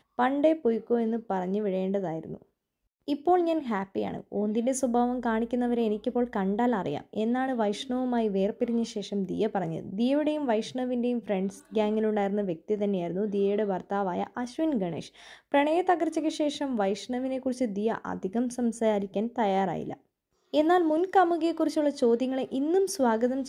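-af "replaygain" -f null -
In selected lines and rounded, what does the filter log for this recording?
track_gain = +8.5 dB
track_peak = 0.204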